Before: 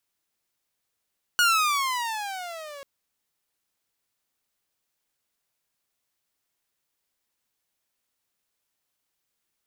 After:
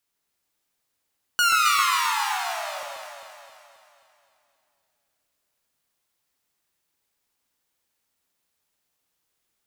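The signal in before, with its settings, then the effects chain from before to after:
pitch glide with a swell saw, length 1.44 s, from 1,460 Hz, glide −17 semitones, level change −22.5 dB, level −14 dB
on a send: delay that swaps between a low-pass and a high-pass 133 ms, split 1,600 Hz, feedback 72%, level −2 dB
on the sum: reverb with rising layers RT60 1.2 s, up +7 semitones, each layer −8 dB, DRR 5.5 dB

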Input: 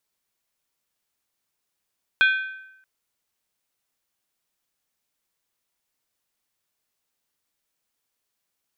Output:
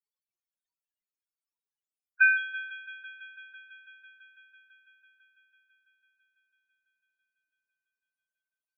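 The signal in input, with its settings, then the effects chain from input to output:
struck skin, lowest mode 1,540 Hz, decay 0.86 s, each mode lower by 6 dB, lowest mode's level −13 dB
delay with a high-pass on its return 166 ms, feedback 84%, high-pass 1,600 Hz, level −14 dB
spectral peaks only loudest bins 4

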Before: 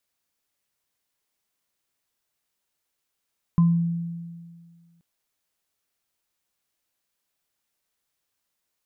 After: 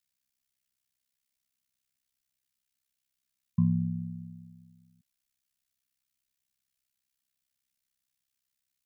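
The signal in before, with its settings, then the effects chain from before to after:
inharmonic partials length 1.43 s, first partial 169 Hz, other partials 1,030 Hz, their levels −17 dB, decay 1.88 s, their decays 0.31 s, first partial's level −13 dB
amplitude modulation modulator 65 Hz, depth 80%
elliptic band-stop filter 260–610 Hz
parametric band 820 Hz −15 dB 1.2 octaves

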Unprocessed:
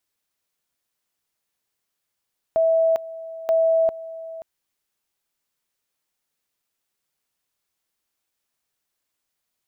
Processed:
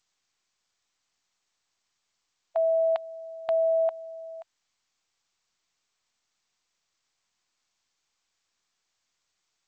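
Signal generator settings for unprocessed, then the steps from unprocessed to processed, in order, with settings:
tone at two levels in turn 653 Hz −15 dBFS, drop 17 dB, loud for 0.40 s, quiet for 0.53 s, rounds 2
linear-phase brick-wall high-pass 650 Hz
G.722 64 kbit/s 16,000 Hz

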